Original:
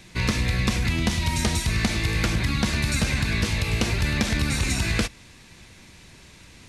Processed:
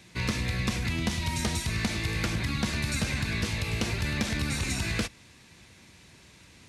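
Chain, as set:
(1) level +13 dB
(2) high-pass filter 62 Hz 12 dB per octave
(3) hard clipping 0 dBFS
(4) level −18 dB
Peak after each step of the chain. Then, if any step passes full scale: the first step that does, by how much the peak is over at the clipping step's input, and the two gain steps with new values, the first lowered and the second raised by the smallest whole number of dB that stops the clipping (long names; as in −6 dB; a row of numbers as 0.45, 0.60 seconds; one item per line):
+4.5, +6.0, 0.0, −18.0 dBFS
step 1, 6.0 dB
step 1 +7 dB, step 4 −12 dB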